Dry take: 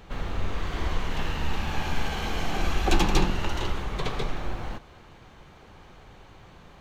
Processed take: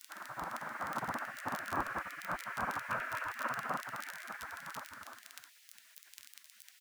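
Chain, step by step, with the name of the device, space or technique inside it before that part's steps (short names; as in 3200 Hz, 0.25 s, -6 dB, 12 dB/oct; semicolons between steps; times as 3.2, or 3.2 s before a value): inverse Chebyshev low-pass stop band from 4400 Hz, stop band 60 dB; bouncing-ball echo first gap 0.28 s, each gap 0.7×, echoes 5; vinyl LP (crackle 22/s -32 dBFS; pink noise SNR 40 dB); spectral gate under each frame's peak -30 dB weak; bell 440 Hz -13.5 dB 0.77 oct; gain +7 dB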